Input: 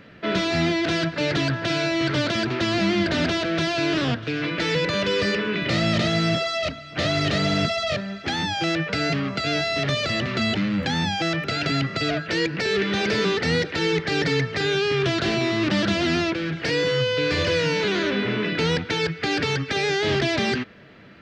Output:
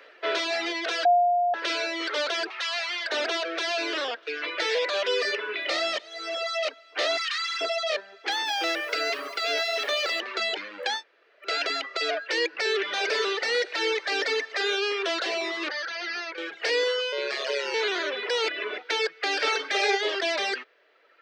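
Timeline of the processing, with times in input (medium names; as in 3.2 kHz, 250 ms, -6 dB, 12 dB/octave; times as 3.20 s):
1.05–1.54 s: bleep 706 Hz -14.5 dBFS
2.50–3.12 s: high-pass 870 Hz
4.69–5.09 s: loudspeaker Doppler distortion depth 0.18 ms
5.99–6.63 s: fade in, from -13.5 dB
7.17–7.61 s: steep high-pass 1 kHz 72 dB/octave
8.11–10.20 s: bit-crushed delay 203 ms, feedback 35%, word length 7-bit, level -7 dB
10.99–11.46 s: room tone, crossfade 0.10 s
12.88–14.78 s: thinning echo 119 ms, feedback 52%, level -10 dB
15.70–16.38 s: rippled Chebyshev low-pass 6.4 kHz, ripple 9 dB
17.12–17.74 s: ring modulator 68 Hz
18.29–18.78 s: reverse
19.34–19.86 s: reverb throw, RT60 0.84 s, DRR -1 dB
whole clip: band-stop 7.1 kHz, Q 21; reverb removal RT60 1.6 s; steep high-pass 400 Hz 36 dB/octave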